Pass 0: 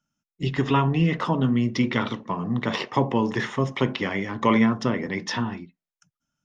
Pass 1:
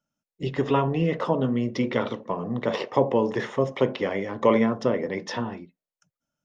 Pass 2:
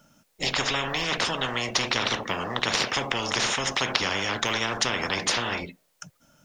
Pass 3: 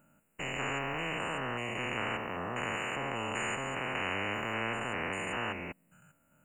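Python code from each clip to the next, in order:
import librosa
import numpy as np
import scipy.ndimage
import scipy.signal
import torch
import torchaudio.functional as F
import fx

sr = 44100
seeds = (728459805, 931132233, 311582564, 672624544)

y1 = fx.peak_eq(x, sr, hz=530.0, db=13.0, octaves=0.99)
y1 = y1 * 10.0 ** (-5.5 / 20.0)
y2 = fx.spectral_comp(y1, sr, ratio=10.0)
y2 = y2 * 10.0 ** (5.0 / 20.0)
y3 = fx.spec_steps(y2, sr, hold_ms=200)
y3 = fx.brickwall_bandstop(y3, sr, low_hz=3000.0, high_hz=6800.0)
y3 = y3 * 10.0 ** (-4.5 / 20.0)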